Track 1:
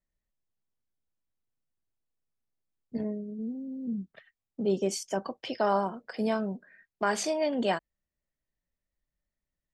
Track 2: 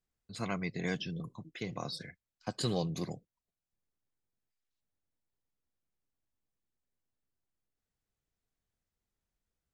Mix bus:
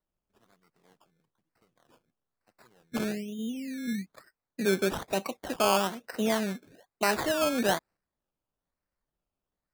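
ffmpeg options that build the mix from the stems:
ffmpeg -i stem1.wav -i stem2.wav -filter_complex "[0:a]volume=1.5dB,asplit=2[link_01][link_02];[1:a]bass=frequency=250:gain=-8,treble=frequency=4000:gain=12,volume=0dB[link_03];[link_02]apad=whole_len=429201[link_04];[link_03][link_04]sidechaingate=range=-28dB:threshold=-53dB:ratio=16:detection=peak[link_05];[link_01][link_05]amix=inputs=2:normalize=0,acrusher=samples=18:mix=1:aa=0.000001:lfo=1:lforange=10.8:lforate=1.1,lowshelf=frequency=73:gain=-6.5" out.wav

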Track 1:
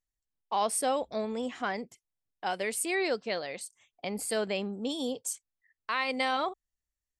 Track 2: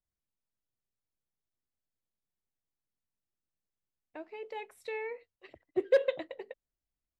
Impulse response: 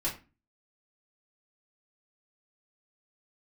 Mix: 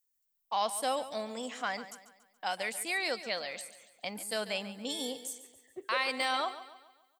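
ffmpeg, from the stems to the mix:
-filter_complex "[0:a]aemphasis=mode=production:type=bsi,deesser=0.75,equalizer=frequency=390:width_type=o:width=0.36:gain=-11,volume=-1.5dB,asplit=2[link_01][link_02];[link_02]volume=-14dB[link_03];[1:a]volume=-14dB,asplit=2[link_04][link_05];[link_05]volume=-9dB[link_06];[link_03][link_06]amix=inputs=2:normalize=0,aecho=0:1:141|282|423|564|705|846:1|0.44|0.194|0.0852|0.0375|0.0165[link_07];[link_01][link_04][link_07]amix=inputs=3:normalize=0"

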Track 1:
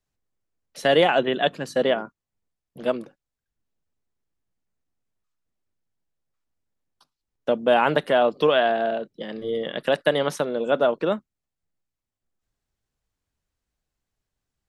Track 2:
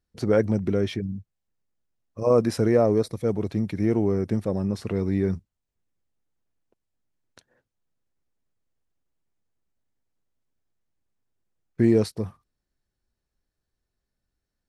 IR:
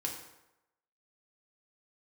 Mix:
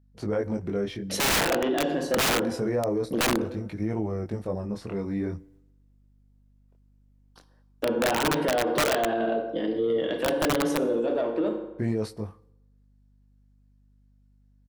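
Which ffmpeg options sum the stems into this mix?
-filter_complex "[0:a]equalizer=frequency=330:width=1.1:gain=11,acontrast=68,adelay=350,volume=-1.5dB,afade=type=out:start_time=10.83:duration=0.21:silence=0.473151,asplit=2[link_01][link_02];[link_02]volume=-9.5dB[link_03];[1:a]equalizer=frequency=900:width_type=o:width=1.7:gain=5.5,flanger=delay=18.5:depth=6.6:speed=0.5,aeval=exprs='val(0)+0.00158*(sin(2*PI*50*n/s)+sin(2*PI*2*50*n/s)/2+sin(2*PI*3*50*n/s)/3+sin(2*PI*4*50*n/s)/4+sin(2*PI*5*50*n/s)/5)':channel_layout=same,volume=-4dB,asplit=3[link_04][link_05][link_06];[link_05]volume=-18.5dB[link_07];[link_06]apad=whole_len=662928[link_08];[link_01][link_08]sidechaingate=range=-33dB:threshold=-58dB:ratio=16:detection=peak[link_09];[2:a]atrim=start_sample=2205[link_10];[link_03][link_07]amix=inputs=2:normalize=0[link_11];[link_11][link_10]afir=irnorm=-1:irlink=0[link_12];[link_09][link_04][link_12]amix=inputs=3:normalize=0,aeval=exprs='(mod(3.35*val(0)+1,2)-1)/3.35':channel_layout=same,alimiter=limit=-18dB:level=0:latency=1:release=32"

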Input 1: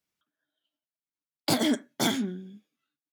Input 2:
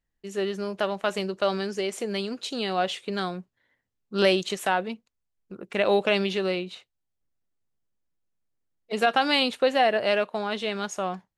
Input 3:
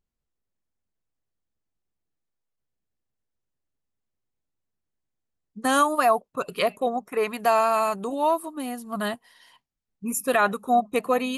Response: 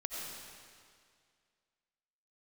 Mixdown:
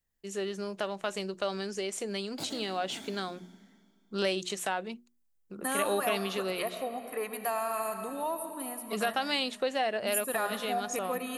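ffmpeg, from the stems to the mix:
-filter_complex "[0:a]adelay=900,volume=-11dB,asplit=2[link_01][link_02];[link_02]volume=-10dB[link_03];[1:a]equalizer=frequency=8000:width=0.83:gain=7,volume=-3dB,asplit=2[link_04][link_05];[2:a]equalizer=frequency=1800:width=5.9:gain=5,aexciter=amount=5.4:drive=3.9:freq=8900,volume=-10.5dB,asplit=2[link_06][link_07];[link_07]volume=-5.5dB[link_08];[link_05]apad=whole_len=177679[link_09];[link_01][link_09]sidechaincompress=threshold=-41dB:ratio=8:attack=16:release=316[link_10];[3:a]atrim=start_sample=2205[link_11];[link_03][link_08]amix=inputs=2:normalize=0[link_12];[link_12][link_11]afir=irnorm=-1:irlink=0[link_13];[link_10][link_04][link_06][link_13]amix=inputs=4:normalize=0,bandreject=frequency=60:width_type=h:width=6,bandreject=frequency=120:width_type=h:width=6,bandreject=frequency=180:width_type=h:width=6,bandreject=frequency=240:width_type=h:width=6,bandreject=frequency=300:width_type=h:width=6,bandreject=frequency=360:width_type=h:width=6,acompressor=threshold=-36dB:ratio=1.5"

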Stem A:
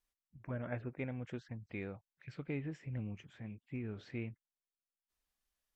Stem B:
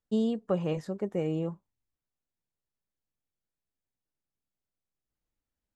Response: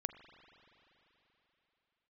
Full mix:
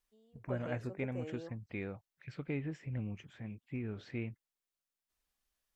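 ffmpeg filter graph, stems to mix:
-filter_complex "[0:a]volume=2dB,asplit=2[link_01][link_02];[1:a]highpass=330,volume=-11.5dB[link_03];[link_02]apad=whole_len=253824[link_04];[link_03][link_04]sidechaingate=range=-24dB:threshold=-55dB:ratio=16:detection=peak[link_05];[link_01][link_05]amix=inputs=2:normalize=0"

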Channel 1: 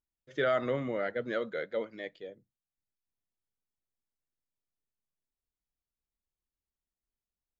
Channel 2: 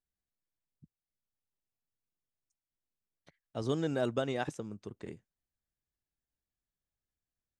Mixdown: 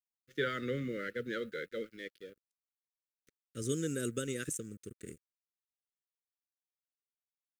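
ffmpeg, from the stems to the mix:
ffmpeg -i stem1.wav -i stem2.wav -filter_complex "[0:a]bass=frequency=250:gain=2,treble=frequency=4000:gain=6,volume=-2dB[link_01];[1:a]aexciter=amount=6.7:drive=8.7:freq=6700,volume=-1.5dB[link_02];[link_01][link_02]amix=inputs=2:normalize=0,aeval=exprs='sgn(val(0))*max(abs(val(0))-0.00158,0)':channel_layout=same,asuperstop=centerf=820:order=8:qfactor=1" out.wav

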